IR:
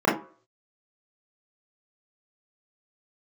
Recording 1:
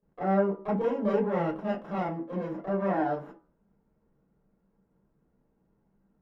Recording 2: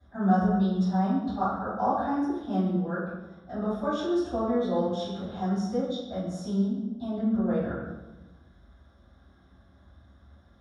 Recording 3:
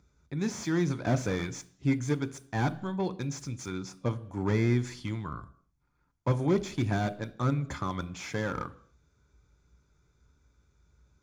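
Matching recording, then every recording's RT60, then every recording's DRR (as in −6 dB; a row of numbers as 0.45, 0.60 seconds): 1; 0.45 s, 1.1 s, non-exponential decay; −8.0, −17.5, 11.0 decibels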